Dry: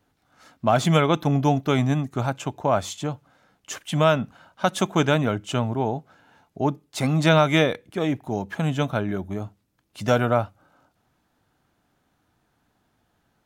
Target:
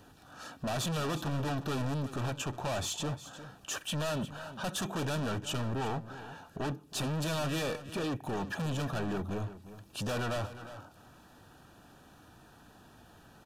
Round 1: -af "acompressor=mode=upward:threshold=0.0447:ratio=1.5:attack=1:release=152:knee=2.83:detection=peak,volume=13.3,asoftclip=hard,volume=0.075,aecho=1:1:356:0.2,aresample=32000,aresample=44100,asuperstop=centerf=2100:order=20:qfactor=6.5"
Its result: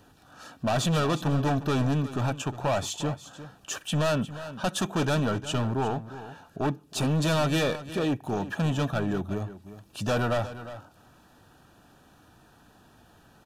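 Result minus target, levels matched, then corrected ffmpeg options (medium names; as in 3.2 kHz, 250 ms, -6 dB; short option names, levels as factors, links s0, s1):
overload inside the chain: distortion -4 dB
-af "acompressor=mode=upward:threshold=0.0447:ratio=1.5:attack=1:release=152:knee=2.83:detection=peak,volume=39.8,asoftclip=hard,volume=0.0251,aecho=1:1:356:0.2,aresample=32000,aresample=44100,asuperstop=centerf=2100:order=20:qfactor=6.5"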